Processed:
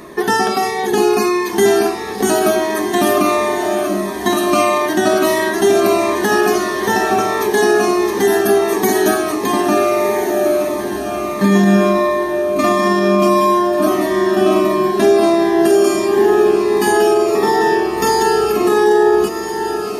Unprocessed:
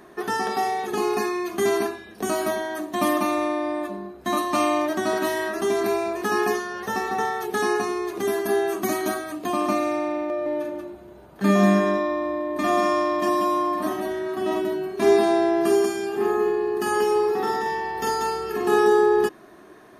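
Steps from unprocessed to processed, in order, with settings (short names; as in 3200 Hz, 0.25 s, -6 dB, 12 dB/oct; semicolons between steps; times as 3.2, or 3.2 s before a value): in parallel at -2 dB: compressor, threshold -30 dBFS, peak gain reduction 16 dB; on the sum: notches 60/120/180/240/300 Hz; on a send: diffused feedback echo 1.421 s, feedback 43%, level -8 dB; on the sum: maximiser +11 dB; cascading phaser falling 1.5 Hz; gain -1.5 dB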